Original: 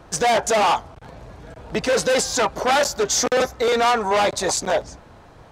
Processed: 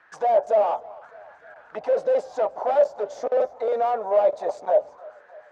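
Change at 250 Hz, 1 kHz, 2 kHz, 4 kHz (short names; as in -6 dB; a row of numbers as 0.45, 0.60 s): -16.0 dB, -5.0 dB, -17.5 dB, under -25 dB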